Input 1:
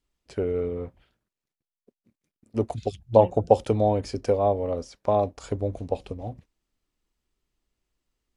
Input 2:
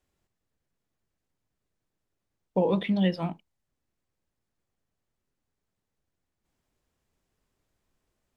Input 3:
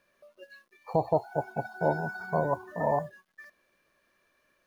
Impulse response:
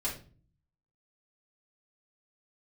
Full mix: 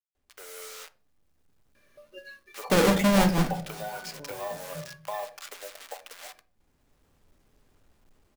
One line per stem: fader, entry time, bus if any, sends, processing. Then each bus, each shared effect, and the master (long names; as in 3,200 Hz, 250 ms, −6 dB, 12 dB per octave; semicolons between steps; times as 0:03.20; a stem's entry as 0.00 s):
−4.0 dB, 0.00 s, bus A, send −19 dB, hold until the input has moved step −37 dBFS; high-pass filter 810 Hz 24 dB per octave
−2.5 dB, 0.15 s, no bus, send −15 dB, each half-wave held at its own peak; automatic ducking −9 dB, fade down 0.30 s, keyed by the first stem
−11.0 dB, 1.75 s, bus A, send −12.5 dB, compressor whose output falls as the input rises −38 dBFS, ratio −1
bus A: 0.0 dB, parametric band 810 Hz −11.5 dB 0.95 octaves; downward compressor 3 to 1, threshold −46 dBFS, peak gain reduction 11 dB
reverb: on, RT60 0.40 s, pre-delay 3 ms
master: automatic gain control gain up to 9 dB